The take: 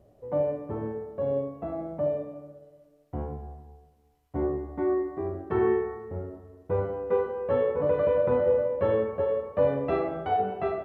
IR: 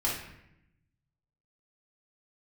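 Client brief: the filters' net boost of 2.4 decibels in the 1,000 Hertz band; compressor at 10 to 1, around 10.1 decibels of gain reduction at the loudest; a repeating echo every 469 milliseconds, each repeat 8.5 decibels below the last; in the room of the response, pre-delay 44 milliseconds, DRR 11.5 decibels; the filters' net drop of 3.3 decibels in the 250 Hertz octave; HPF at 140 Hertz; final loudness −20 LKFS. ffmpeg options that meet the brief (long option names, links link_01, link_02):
-filter_complex "[0:a]highpass=140,equalizer=frequency=250:width_type=o:gain=-5.5,equalizer=frequency=1000:width_type=o:gain=4,acompressor=threshold=-30dB:ratio=10,aecho=1:1:469|938|1407|1876:0.376|0.143|0.0543|0.0206,asplit=2[link_01][link_02];[1:a]atrim=start_sample=2205,adelay=44[link_03];[link_02][link_03]afir=irnorm=-1:irlink=0,volume=-19.5dB[link_04];[link_01][link_04]amix=inputs=2:normalize=0,volume=15dB"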